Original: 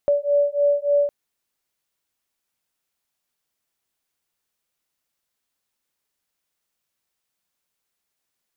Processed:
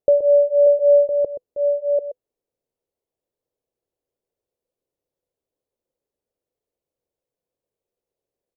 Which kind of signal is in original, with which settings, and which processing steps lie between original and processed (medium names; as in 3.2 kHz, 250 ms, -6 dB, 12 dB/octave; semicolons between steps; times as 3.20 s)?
beating tones 574 Hz, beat 3.4 Hz, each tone -19.5 dBFS 1.01 s
chunks repeated in reverse 663 ms, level -5 dB; FFT filter 140 Hz 0 dB, 200 Hz -5 dB, 500 Hz +10 dB, 720 Hz -3 dB, 1.4 kHz -17 dB; delay 126 ms -11 dB